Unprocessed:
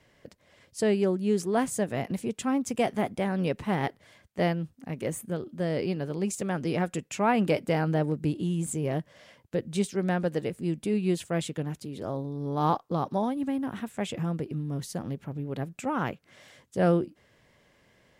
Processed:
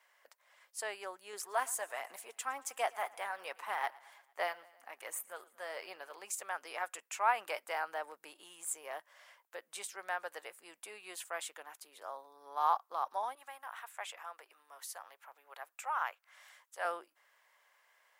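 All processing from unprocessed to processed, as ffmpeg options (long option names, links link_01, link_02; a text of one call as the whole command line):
ffmpeg -i in.wav -filter_complex "[0:a]asettb=1/sr,asplit=3[link_01][link_02][link_03];[link_01]atrim=end=1.334[link_04];[link_02]atrim=start=1.33:end=6.22,asetpts=PTS-STARTPTS,afade=type=in:duration=0.004:curve=qsin,afade=type=out:start_time=4.886:duration=0.004:curve=qsin,aphaser=in_gain=1:out_gain=1:delay=4.4:decay=0.32:speed=1.3:type=sinusoidal,aecho=1:1:113|226|339|452:0.075|0.0442|0.0261|0.0154,atrim=end_sample=215649[link_05];[link_03]atrim=start=6.216[link_06];[link_04][link_05]acrossfade=duration=0.004:curve1=hsin:curve2=qsin[link_07];[link_07][link_06]acrossfade=duration=0.004:curve1=qsin:curve2=hsin,asettb=1/sr,asplit=3[link_08][link_09][link_10];[link_08]atrim=end=13.354[link_11];[link_09]atrim=start=13.35:end=16.85,asetpts=PTS-STARTPTS,afade=type=in:duration=0.004:curve=qsin,afade=type=out:start_time=3.496:duration=0.004:curve=qsin,highpass=590,adynamicequalizer=threshold=0.00158:dfrequency=5700:dqfactor=0.7:tfrequency=5700:tqfactor=0.7:attack=5:release=100:ratio=0.375:range=2:mode=cutabove:tftype=highshelf[link_12];[link_10]atrim=start=16.846[link_13];[link_11][link_12]acrossfade=duration=0.004:curve1=hsin:curve2=qsin[link_14];[link_14][link_13]acrossfade=duration=0.004:curve1=qsin:curve2=hsin,highpass=frequency=960:width=0.5412,highpass=frequency=960:width=1.3066,equalizer=frequency=3900:width=0.32:gain=-15,volume=7.5dB" out.wav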